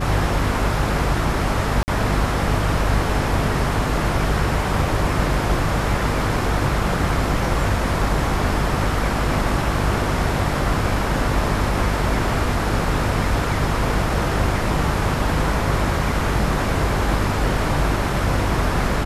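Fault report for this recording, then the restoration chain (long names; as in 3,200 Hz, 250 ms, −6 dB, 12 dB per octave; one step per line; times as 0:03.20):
mains hum 50 Hz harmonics 7 −25 dBFS
0:01.83–0:01.88: drop-out 49 ms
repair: hum removal 50 Hz, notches 7
repair the gap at 0:01.83, 49 ms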